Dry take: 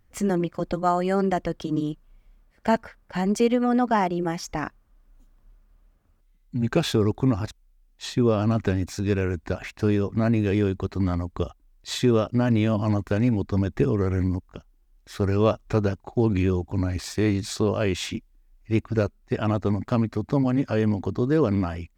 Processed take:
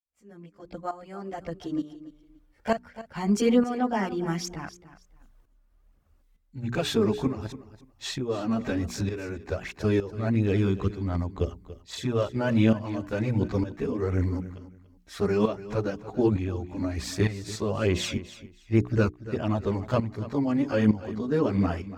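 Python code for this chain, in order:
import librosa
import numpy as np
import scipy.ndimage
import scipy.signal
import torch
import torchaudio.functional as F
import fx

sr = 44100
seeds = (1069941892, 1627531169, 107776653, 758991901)

y = fx.fade_in_head(x, sr, length_s=3.37)
y = fx.hum_notches(y, sr, base_hz=60, count=7)
y = fx.chorus_voices(y, sr, voices=2, hz=0.67, base_ms=15, depth_ms=2.5, mix_pct=70)
y = fx.tremolo_shape(y, sr, shape='saw_up', hz=1.1, depth_pct=75)
y = fx.echo_feedback(y, sr, ms=286, feedback_pct=22, wet_db=-15.5)
y = y * librosa.db_to_amplitude(3.5)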